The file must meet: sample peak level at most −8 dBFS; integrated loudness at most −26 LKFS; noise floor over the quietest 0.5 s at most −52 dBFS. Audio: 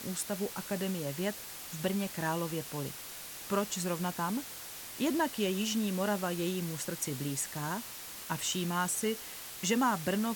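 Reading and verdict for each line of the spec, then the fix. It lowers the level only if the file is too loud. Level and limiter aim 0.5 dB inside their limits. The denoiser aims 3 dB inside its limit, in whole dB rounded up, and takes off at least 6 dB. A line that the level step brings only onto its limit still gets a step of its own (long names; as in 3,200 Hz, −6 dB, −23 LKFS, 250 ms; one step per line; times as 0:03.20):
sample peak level −17.5 dBFS: in spec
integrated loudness −34.0 LKFS: in spec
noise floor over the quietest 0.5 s −45 dBFS: out of spec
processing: broadband denoise 10 dB, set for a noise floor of −45 dBFS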